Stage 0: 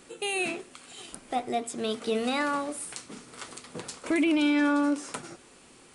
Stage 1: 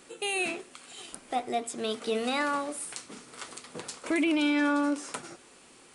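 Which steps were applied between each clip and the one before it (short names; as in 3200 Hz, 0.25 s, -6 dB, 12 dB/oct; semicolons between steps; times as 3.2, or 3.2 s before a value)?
low shelf 210 Hz -7 dB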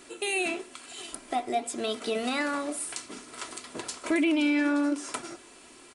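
comb 3 ms, depth 49%; in parallel at +2 dB: compressor, threshold -31 dBFS, peak gain reduction 10.5 dB; on the sum: flange 1 Hz, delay 0.5 ms, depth 6.3 ms, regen -87%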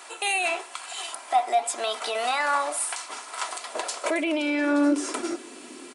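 limiter -23 dBFS, peak gain reduction 8 dB; high-pass sweep 830 Hz -> 260 Hz, 3.36–5.52; gain +6.5 dB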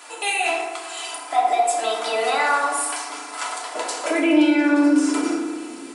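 FDN reverb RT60 1.3 s, low-frequency decay 1.35×, high-frequency decay 0.5×, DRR -2.5 dB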